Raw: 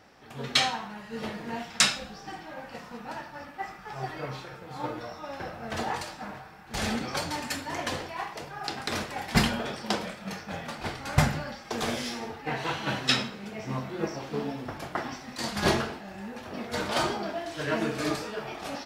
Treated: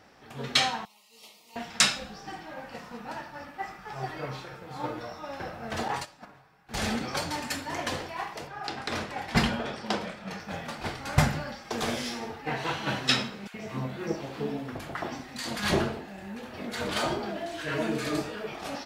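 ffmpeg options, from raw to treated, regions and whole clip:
-filter_complex "[0:a]asettb=1/sr,asplit=3[a][b][c];[a]atrim=end=0.854[d];[b]atrim=start=0.85:end=1.56,asetpts=PTS-STARTPTS,afade=t=in:d=0.004:c=qsin,afade=t=out:st=0.706:d=0.004:c=qsin,asuperstop=centerf=1600:order=4:qfactor=1.5,aderivative[e];[c]atrim=start=1.556[f];[d][e]acrossfade=d=0.004:c1=hsin:c2=qsin[g];[g][f]acrossfade=d=0.004:c1=qsin:c2=hsin,asettb=1/sr,asplit=3[h][i][j];[h]atrim=end=5.884[k];[i]atrim=start=5.88:end=6.69,asetpts=PTS-STARTPTS,afade=t=in:d=0.004:c=qsin,afade=t=out:st=0.806:d=0.004:c=qsin,agate=range=-13dB:threshold=-37dB:ratio=16:release=100:detection=peak,aecho=1:1:7.2:0.46,atrim=end_sample=35721[l];[j]atrim=start=6.686[m];[k][l]acrossfade=d=0.004:c1=hsin:c2=qsin[n];[n][m]acrossfade=d=0.004:c1=qsin:c2=hsin,asettb=1/sr,asplit=3[o][p][q];[o]atrim=end=8.474[r];[p]atrim=start=8.47:end=10.4,asetpts=PTS-STARTPTS,afade=t=in:d=0.004:c=qsin,afade=t=out:st=1.926:d=0.004:c=qsin,highshelf=f=7.5k:g=-11,bandreject=f=50:t=h:w=6,bandreject=f=100:t=h:w=6,bandreject=f=150:t=h:w=6,bandreject=f=200:t=h:w=6,bandreject=f=250:t=h:w=6,bandreject=f=300:t=h:w=6,bandreject=f=350:t=h:w=6,bandreject=f=400:t=h:w=6[s];[q]atrim=start=10.396[t];[r][s]acrossfade=d=0.004:c1=hsin:c2=qsin[u];[u][t]acrossfade=d=0.004:c1=qsin:c2=hsin,asettb=1/sr,asplit=3[v][w][x];[v]atrim=end=13.474[y];[w]atrim=start=13.47:end=18.53,asetpts=PTS-STARTPTS,afade=t=in:d=0.004:c=qsin,afade=t=out:st=5.056:d=0.004:c=qsin,equalizer=f=5.4k:w=4.4:g=-4.5,acrossover=split=990[z][aa];[z]adelay=70[ab];[ab][aa]amix=inputs=2:normalize=0,atrim=end_sample=223146[ac];[x]atrim=start=18.526[ad];[y][ac]acrossfade=d=0.004:c1=hsin:c2=qsin[ae];[ae][ad]acrossfade=d=0.004:c1=qsin:c2=hsin"

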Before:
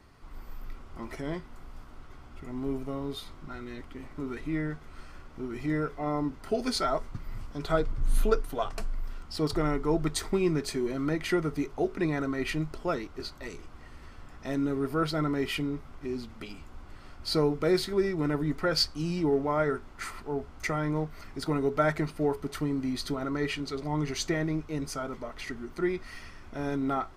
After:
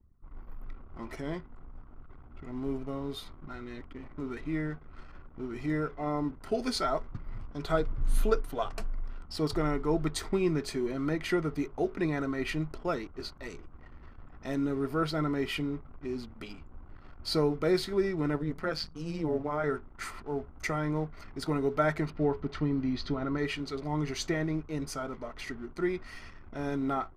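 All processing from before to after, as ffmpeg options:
-filter_complex "[0:a]asettb=1/sr,asplit=3[a][b][c];[a]atrim=end=18.364[d];[b]atrim=start=18.36:end=19.64,asetpts=PTS-STARTPTS,afade=t=in:d=0.004:c=qsin,afade=t=out:st=1.276:d=0.004:c=qsin,acrossover=split=3900[e][f];[f]acompressor=threshold=-36dB:ratio=4:attack=1:release=60[g];[e][g]amix=inputs=2:normalize=0,tremolo=f=160:d=0.75[h];[c]atrim=start=19.636[i];[d][h]acrossfade=d=0.004:c1=hsin:c2=qsin[j];[j][i]acrossfade=d=0.004:c1=qsin:c2=hsin,asettb=1/sr,asplit=3[k][l][m];[k]atrim=end=22.104[n];[l]atrim=start=22.1:end=23.38,asetpts=PTS-STARTPTS,afade=t=in:d=0.004:c=qsin,afade=t=out:st=1.276:d=0.004:c=qsin,lowpass=f=5.4k:w=0.5412,lowpass=f=5.4k:w=1.3066,bass=f=250:g=4,treble=f=4k:g=-3[o];[m]atrim=start=23.376[p];[n][o]acrossfade=d=0.004:c1=hsin:c2=qsin[q];[q][p]acrossfade=d=0.004:c1=qsin:c2=hsin,anlmdn=0.00398,adynamicequalizer=threshold=0.00355:dfrequency=4800:dqfactor=0.7:tfrequency=4800:tqfactor=0.7:attack=5:release=100:ratio=0.375:range=2:mode=cutabove:tftype=highshelf,volume=-1.5dB"

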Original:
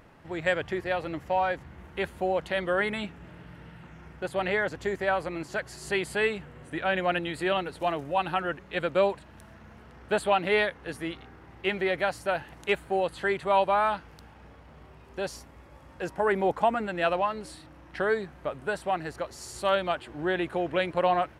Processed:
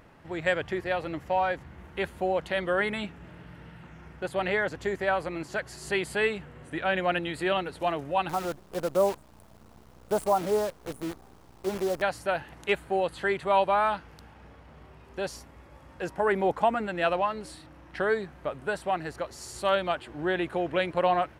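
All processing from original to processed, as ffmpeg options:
-filter_complex "[0:a]asettb=1/sr,asplit=3[a][b][c];[a]atrim=end=8.294[d];[b]atrim=start=8.29:end=12.02,asetpts=PTS-STARTPTS,afade=t=in:d=0.004:c=qsin,afade=t=out:st=3.726:d=0.004:c=qsin,asuperstop=centerf=3100:order=8:qfactor=0.51,acrusher=bits=7:dc=4:mix=0:aa=0.000001[e];[c]atrim=start=12.016[f];[d][e]acrossfade=d=0.004:c1=hsin:c2=qsin[g];[g][f]acrossfade=d=0.004:c1=qsin:c2=hsin"

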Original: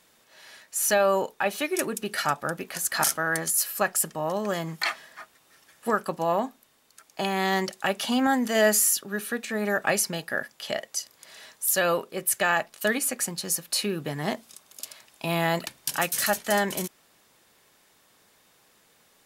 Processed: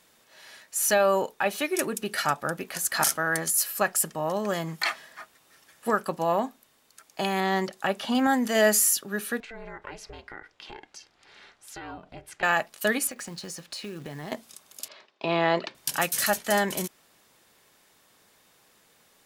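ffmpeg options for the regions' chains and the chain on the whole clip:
-filter_complex "[0:a]asettb=1/sr,asplit=3[a][b][c];[a]atrim=end=7.404[d];[b]atrim=start=7.4:end=8.15,asetpts=PTS-STARTPTS,afade=t=in:d=0.004:c=qsin,afade=t=out:st=0.746:d=0.004:c=qsin,acrossover=split=3900[e][f];[f]acompressor=threshold=-46dB:ratio=4:attack=1:release=60[g];[e][g]amix=inputs=2:normalize=0,equalizer=f=2.4k:w=1.7:g=-3.5[h];[c]atrim=start=8.146[i];[d][h]acrossfade=d=0.004:c1=hsin:c2=qsin[j];[j][i]acrossfade=d=0.004:c1=qsin:c2=hsin,asettb=1/sr,asplit=3[k][l][m];[k]atrim=end=9.404[n];[l]atrim=start=9.4:end=12.43,asetpts=PTS-STARTPTS,afade=t=in:d=0.004:c=qsin,afade=t=out:st=3.026:d=0.004:c=qsin,lowpass=3.7k,acompressor=threshold=-38dB:ratio=3:attack=3.2:release=140:knee=1:detection=peak,aeval=exprs='val(0)*sin(2*PI*230*n/s)':c=same[o];[m]atrim=start=12.426[p];[n][o]acrossfade=d=0.004:c1=hsin:c2=qsin[q];[q][p]acrossfade=d=0.004:c1=qsin:c2=hsin,asettb=1/sr,asplit=3[r][s][t];[r]atrim=end=13.074[u];[s]atrim=start=13.07:end=14.32,asetpts=PTS-STARTPTS,afade=t=in:d=0.004:c=qsin,afade=t=out:st=1.246:d=0.004:c=qsin,lowpass=6.3k,acompressor=threshold=-34dB:ratio=6:attack=3.2:release=140:knee=1:detection=peak,acrusher=bits=4:mode=log:mix=0:aa=0.000001[v];[t]atrim=start=14.316[w];[u][v]acrossfade=d=0.004:c1=hsin:c2=qsin[x];[x][w]acrossfade=d=0.004:c1=qsin:c2=hsin,asettb=1/sr,asplit=3[y][z][aa];[y]atrim=end=14.884[ab];[z]atrim=start=14.88:end=15.75,asetpts=PTS-STARTPTS,afade=t=in:d=0.004:c=qsin,afade=t=out:st=0.866:d=0.004:c=qsin,highpass=200,equalizer=f=390:t=q:w=4:g=9,equalizer=f=580:t=q:w=4:g=5,equalizer=f=1.1k:t=q:w=4:g=4,lowpass=f=4.7k:w=0.5412,lowpass=f=4.7k:w=1.3066,agate=range=-33dB:threshold=-53dB:ratio=3:release=100:detection=peak[ac];[aa]atrim=start=15.746[ad];[ab][ac]acrossfade=d=0.004:c1=hsin:c2=qsin[ae];[ae][ad]acrossfade=d=0.004:c1=qsin:c2=hsin"

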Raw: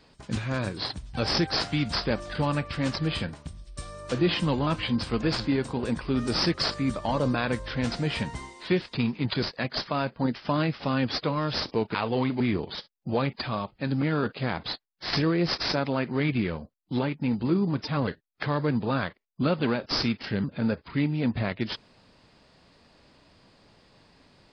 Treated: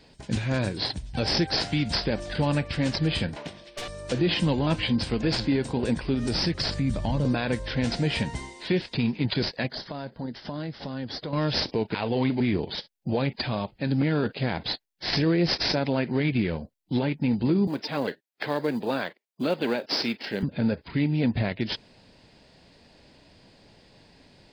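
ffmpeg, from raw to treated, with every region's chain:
-filter_complex "[0:a]asettb=1/sr,asplit=3[a][b][c];[a]atrim=end=3.364[d];[b]atrim=start=3.36:end=3.88,asetpts=PTS-STARTPTS,afade=t=in:d=0.004:c=qsin,afade=t=out:st=0.516:d=0.004:c=qsin,highpass=420,lowpass=3k,aeval=exprs='0.0266*sin(PI/2*3.55*val(0)/0.0266)':c=same[e];[c]atrim=start=3.876[f];[d][e]acrossfade=d=0.004:c1=hsin:c2=qsin[g];[g][f]acrossfade=d=0.004:c1=qsin:c2=hsin,asettb=1/sr,asplit=3[h][i][j];[h]atrim=end=6.144[k];[i]atrim=start=6.14:end=7.25,asetpts=PTS-STARTPTS,afade=t=in:d=0.004:c=qsin,afade=t=out:st=1.106:d=0.004:c=qsin,asubboost=boost=9.5:cutoff=220,acompressor=threshold=-26dB:ratio=3:attack=3.2:release=140:knee=1:detection=peak[l];[j]atrim=start=7.246[m];[k][l]acrossfade=d=0.004:c1=hsin:c2=qsin[n];[n][m]acrossfade=d=0.004:c1=qsin:c2=hsin,asettb=1/sr,asplit=3[o][p][q];[o]atrim=end=9.674[r];[p]atrim=start=9.67:end=11.33,asetpts=PTS-STARTPTS,afade=t=in:d=0.004:c=qsin,afade=t=out:st=1.656:d=0.004:c=qsin,acompressor=threshold=-36dB:ratio=3:attack=3.2:release=140:knee=1:detection=peak,equalizer=f=2.5k:w=3.6:g=-10[s];[q]atrim=start=11.326[t];[r][s]acrossfade=d=0.004:c1=hsin:c2=qsin[u];[u][t]acrossfade=d=0.004:c1=qsin:c2=hsin,asettb=1/sr,asplit=3[v][w][x];[v]atrim=end=17.674[y];[w]atrim=start=17.67:end=20.43,asetpts=PTS-STARTPTS,afade=t=in:d=0.004:c=qsin,afade=t=out:st=2.756:d=0.004:c=qsin,highpass=300,highshelf=f=3.4k:g=-2,acrusher=bits=8:mode=log:mix=0:aa=0.000001[z];[x]atrim=start=20.426[aa];[y][z]acrossfade=d=0.004:c1=hsin:c2=qsin[ab];[ab][aa]acrossfade=d=0.004:c1=qsin:c2=hsin,equalizer=f=1.2k:t=o:w=0.44:g=-10,alimiter=limit=-18.5dB:level=0:latency=1:release=80,volume=3.5dB"

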